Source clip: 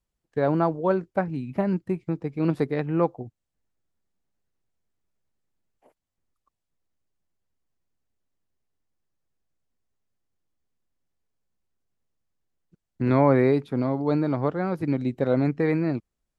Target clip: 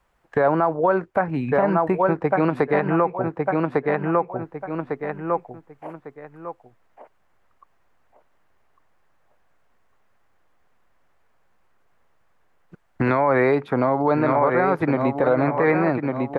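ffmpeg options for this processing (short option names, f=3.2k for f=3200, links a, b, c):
-filter_complex "[0:a]asettb=1/sr,asplit=3[a][b][c];[a]atrim=end=13.024[d];[b]atrim=start=13.02:end=13.55,asetpts=PTS-STARTPTS,afade=t=in:d=0.004:c=qsin,afade=t=out:st=0.526:d=0.004:c=qsin,highshelf=f=3.8k:g=9.5[e];[c]atrim=start=13.546[f];[d][e]acrossfade=d=0.004:c1=hsin:c2=qsin[g];[g][f]acrossfade=d=0.004:c1=qsin:c2=hsin,asplit=2[h][i];[i]adelay=1151,lowpass=f=4.1k:p=1,volume=-8dB,asplit=2[j][k];[k]adelay=1151,lowpass=f=4.1k:p=1,volume=0.26,asplit=2[l][m];[m]adelay=1151,lowpass=f=4.1k:p=1,volume=0.26[n];[j][l][n]amix=inputs=3:normalize=0[o];[h][o]amix=inputs=2:normalize=0,acompressor=threshold=-36dB:ratio=3,acrossover=split=590 2100:gain=0.178 1 0.112[p][q][r];[p][q][r]amix=inputs=3:normalize=0,alimiter=level_in=35.5dB:limit=-1dB:release=50:level=0:latency=1,volume=-8.5dB"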